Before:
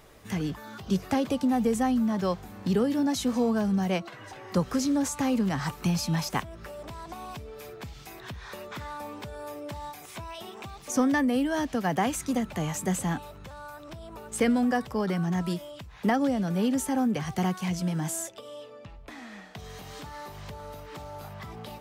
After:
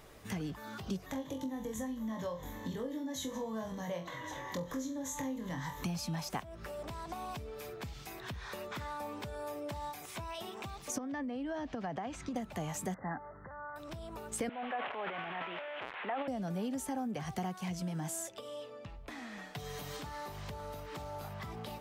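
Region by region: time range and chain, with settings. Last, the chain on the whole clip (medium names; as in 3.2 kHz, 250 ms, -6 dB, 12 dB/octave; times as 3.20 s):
1.06–5.84 s: rippled EQ curve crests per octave 1.1, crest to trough 13 dB + compression 2.5:1, threshold -35 dBFS + flutter echo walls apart 3.9 m, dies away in 0.28 s
10.98–12.36 s: compression 10:1, threshold -28 dBFS + distance through air 140 m
12.94–13.76 s: brick-wall FIR low-pass 2.1 kHz + tilt EQ +2 dB/octave
14.49–16.28 s: one-bit delta coder 16 kbps, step -31 dBFS + high-pass 640 Hz + transient shaper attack -3 dB, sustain +12 dB
19.37–19.97 s: treble shelf 11 kHz +7.5 dB + comb 6.9 ms, depth 66%
whole clip: dynamic bell 700 Hz, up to +6 dB, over -43 dBFS, Q 2.4; compression 3:1, threshold -35 dBFS; trim -2 dB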